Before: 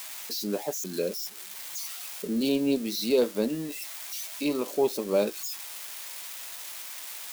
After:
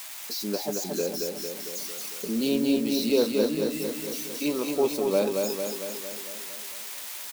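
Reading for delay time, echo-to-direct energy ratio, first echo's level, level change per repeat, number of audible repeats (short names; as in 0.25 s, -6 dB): 0.226 s, -2.0 dB, -4.0 dB, -4.5 dB, 7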